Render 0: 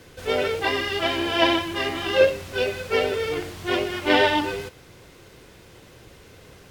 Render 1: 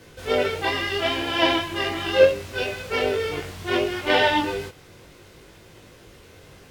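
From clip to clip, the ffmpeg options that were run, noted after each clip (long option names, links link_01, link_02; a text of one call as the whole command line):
ffmpeg -i in.wav -af "flanger=delay=18.5:depth=2.8:speed=0.72,volume=3dB" out.wav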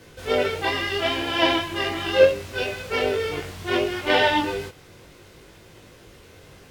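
ffmpeg -i in.wav -af anull out.wav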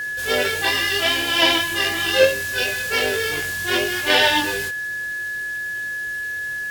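ffmpeg -i in.wav -af "crystalizer=i=5:c=0,aeval=exprs='val(0)+0.0708*sin(2*PI*1700*n/s)':channel_layout=same,volume=-1.5dB" out.wav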